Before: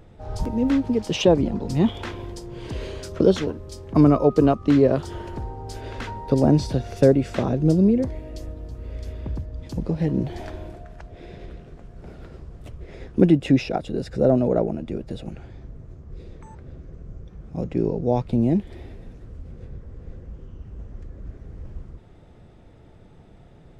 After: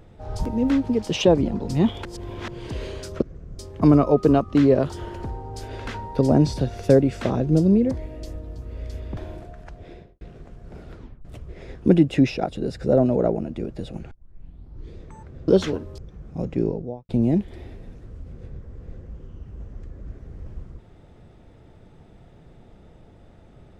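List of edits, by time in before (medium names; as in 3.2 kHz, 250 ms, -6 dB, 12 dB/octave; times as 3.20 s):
2.05–2.48 s: reverse
3.22–3.72 s: swap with 16.80–17.17 s
9.30–10.49 s: delete
11.17–11.53 s: studio fade out
12.27 s: tape stop 0.30 s
15.43 s: tape start 0.84 s
17.77–18.28 s: studio fade out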